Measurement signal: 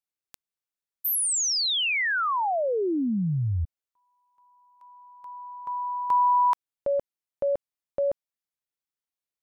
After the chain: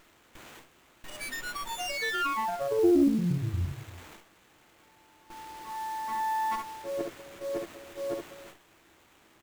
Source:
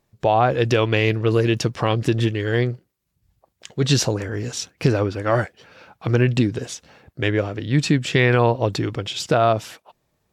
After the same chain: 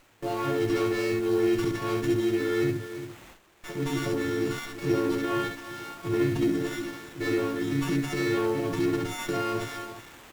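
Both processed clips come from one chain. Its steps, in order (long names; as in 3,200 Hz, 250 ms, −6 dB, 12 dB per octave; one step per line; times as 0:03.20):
every partial snapped to a pitch grid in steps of 4 semitones
high-shelf EQ 3,800 Hz −9 dB
comb filter 6.3 ms, depth 52%
on a send: single-tap delay 342 ms −24 dB
on the sum: downward compressor 5 to 1, threshold −29 dBFS
transient designer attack −10 dB, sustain +8 dB
bit-depth reduction 8 bits, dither triangular
parametric band 330 Hz +12 dB 0.46 octaves
ambience of single reflections 21 ms −16 dB, 68 ms −4.5 dB
noise gate with hold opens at −35 dBFS, closes at −39 dBFS, hold 132 ms, range −12 dB
windowed peak hold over 9 samples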